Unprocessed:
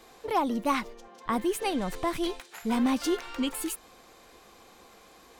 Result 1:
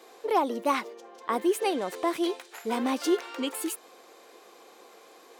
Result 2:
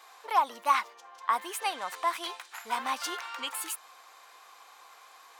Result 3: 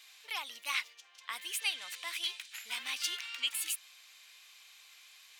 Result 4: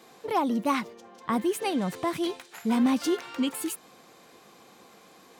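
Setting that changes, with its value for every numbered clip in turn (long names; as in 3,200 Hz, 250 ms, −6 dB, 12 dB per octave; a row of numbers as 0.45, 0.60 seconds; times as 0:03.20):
high-pass with resonance, frequency: 390, 1,000, 2,600, 150 Hertz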